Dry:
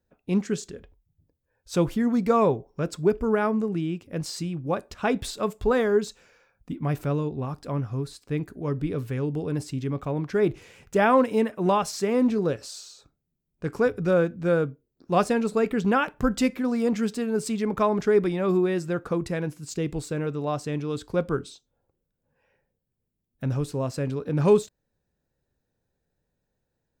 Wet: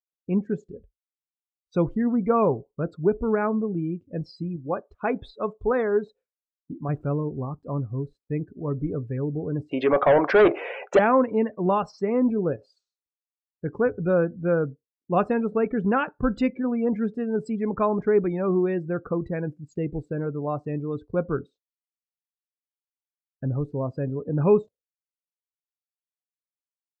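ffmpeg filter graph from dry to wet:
-filter_complex "[0:a]asettb=1/sr,asplit=3[a][b][c];[a]atrim=end=4.564[d];[b]atrim=start=4.56:end=6.89,asetpts=PTS-STARTPTS,afade=t=in:d=0.004:c=qsin,afade=t=out:st=2.326:d=0.004:c=qsin,bass=f=250:g=-6,treble=f=4k:g=-2,bandreject=f=2.7k:w=24[e];[c]atrim=start=6.886[f];[d][e]acrossfade=d=0.004:c1=hsin:c2=qsin[g];[g][f]acrossfade=d=0.004:c1=qsin:c2=hsin,asettb=1/sr,asplit=3[h][i][j];[h]atrim=end=9.714[k];[i]atrim=start=9.71:end=10.99,asetpts=PTS-STARTPTS,afade=t=in:d=0.004:c=qsin,afade=t=out:st=1.276:d=0.004:c=qsin,highpass=390,equalizer=f=620:t=o:w=0.95:g=10,asplit=2[l][m];[m]highpass=f=720:p=1,volume=27dB,asoftclip=type=tanh:threshold=-8dB[n];[l][n]amix=inputs=2:normalize=0,lowpass=f=3.4k:p=1,volume=-6dB[o];[j]atrim=start=10.986[p];[k][o]acrossfade=d=0.004:c1=hsin:c2=qsin[q];[q][p]acrossfade=d=0.004:c1=qsin:c2=hsin,lowpass=f=2.5k:p=1,agate=range=-33dB:threshold=-45dB:ratio=3:detection=peak,afftdn=nr=30:nf=-37"

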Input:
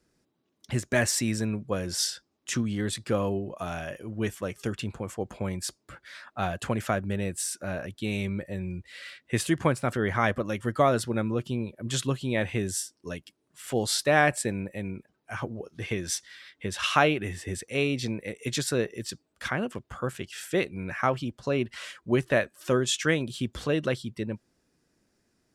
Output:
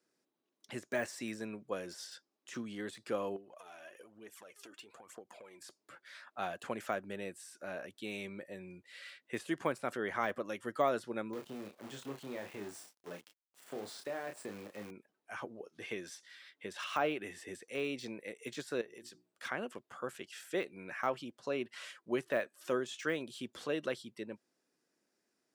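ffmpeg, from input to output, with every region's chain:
-filter_complex "[0:a]asettb=1/sr,asplit=3[a][b][c];[a]atrim=end=3.364[d];[b]atrim=start=3.36:end=5.61,asetpts=PTS-STARTPTS,afade=t=in:d=0.004:c=qsin,afade=t=out:st=2.246:d=0.004:c=qsin,equalizer=f=77:t=o:w=2.8:g=-11,acompressor=threshold=-42dB:ratio=8:attack=3.2:release=140:knee=1:detection=peak,aphaser=in_gain=1:out_gain=1:delay=3.5:decay=0.59:speed=1.1:type=triangular[e];[c]atrim=start=5.606[f];[d][e]acrossfade=d=0.004:c1=hsin:c2=qsin[g];[g][f]acrossfade=d=0.004:c1=qsin:c2=hsin,asettb=1/sr,asplit=3[h][i][j];[h]atrim=end=11.334[k];[i]atrim=start=11.33:end=14.91,asetpts=PTS-STARTPTS,afade=t=in:d=0.004:c=qsin,afade=t=out:st=3.576:d=0.004:c=qsin,acompressor=threshold=-26dB:ratio=10:attack=3.2:release=140:knee=1:detection=peak,acrusher=bits=7:dc=4:mix=0:aa=0.000001,asplit=2[l][m];[m]adelay=29,volume=-6dB[n];[l][n]amix=inputs=2:normalize=0,atrim=end_sample=157878[o];[j]atrim=start=14.906[p];[k][o]acrossfade=d=0.004:c1=hsin:c2=qsin[q];[q][p]acrossfade=d=0.004:c1=qsin:c2=hsin,asettb=1/sr,asplit=3[r][s][t];[r]atrim=end=18.814[u];[s]atrim=start=18.81:end=19.43,asetpts=PTS-STARTPTS,afade=t=in:d=0.004:c=qsin,afade=t=out:st=0.616:d=0.004:c=qsin,bandreject=f=60:t=h:w=6,bandreject=f=120:t=h:w=6,bandreject=f=180:t=h:w=6,bandreject=f=240:t=h:w=6,bandreject=f=300:t=h:w=6,bandreject=f=360:t=h:w=6,acompressor=threshold=-38dB:ratio=4:attack=3.2:release=140:knee=1:detection=peak[v];[t]atrim=start=19.426[w];[u][v]acrossfade=d=0.004:c1=hsin:c2=qsin[x];[x][w]acrossfade=d=0.004:c1=qsin:c2=hsin,highpass=300,deesser=0.95,volume=-7.5dB"

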